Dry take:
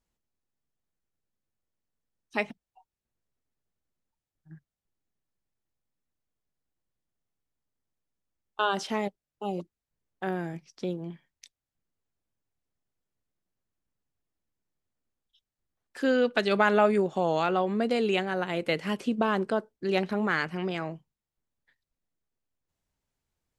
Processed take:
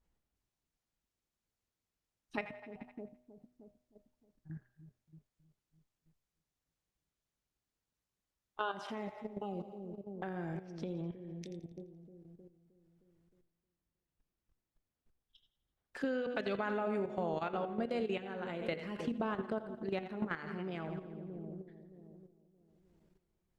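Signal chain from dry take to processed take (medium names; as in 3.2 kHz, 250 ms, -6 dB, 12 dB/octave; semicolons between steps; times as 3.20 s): two-band feedback delay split 530 Hz, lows 311 ms, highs 85 ms, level -10.5 dB; level held to a coarse grid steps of 13 dB; bass shelf 89 Hz +6.5 dB; de-hum 123.3 Hz, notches 30; compression 2.5:1, threshold -50 dBFS, peak gain reduction 18 dB; treble shelf 4.3 kHz -11.5 dB; trim +8.5 dB; Opus 48 kbps 48 kHz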